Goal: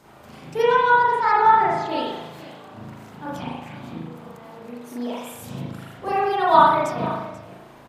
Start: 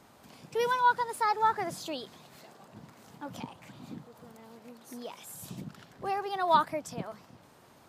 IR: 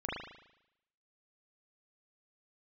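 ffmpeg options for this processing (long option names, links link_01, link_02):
-filter_complex "[0:a]asettb=1/sr,asplit=3[link_01][link_02][link_03];[link_01]atrim=end=0.624[link_04];[link_02]atrim=start=0.62:end=1.89,asetpts=PTS-STARTPTS,afade=type=in:duration=0.004:curve=qsin,afade=type=out:start_time=1.266:duration=0.004:curve=qsin,adynamicsmooth=sensitivity=2:basefreq=4400[link_05];[link_03]atrim=start=1.886[link_06];[link_04][link_05]acrossfade=duration=0.004:curve1=hsin:curve2=qsin[link_07];[link_07][link_06]acrossfade=duration=0.004:curve1=qsin:curve2=hsin,aecho=1:1:485:0.15[link_08];[1:a]atrim=start_sample=2205[link_09];[link_08][link_09]afir=irnorm=-1:irlink=0,volume=6.5dB"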